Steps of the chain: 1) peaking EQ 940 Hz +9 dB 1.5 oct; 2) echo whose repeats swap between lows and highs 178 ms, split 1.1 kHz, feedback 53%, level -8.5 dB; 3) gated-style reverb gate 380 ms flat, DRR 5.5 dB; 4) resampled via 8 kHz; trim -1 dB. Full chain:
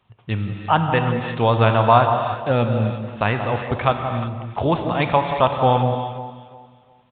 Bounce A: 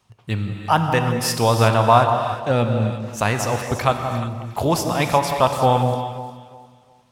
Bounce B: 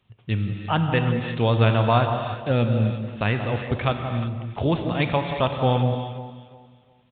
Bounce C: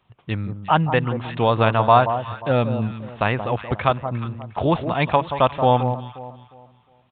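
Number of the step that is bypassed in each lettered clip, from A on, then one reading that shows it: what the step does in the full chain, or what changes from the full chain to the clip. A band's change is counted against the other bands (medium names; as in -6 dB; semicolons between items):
4, 4 kHz band +3.0 dB; 1, 1 kHz band -7.0 dB; 3, momentary loudness spread change +2 LU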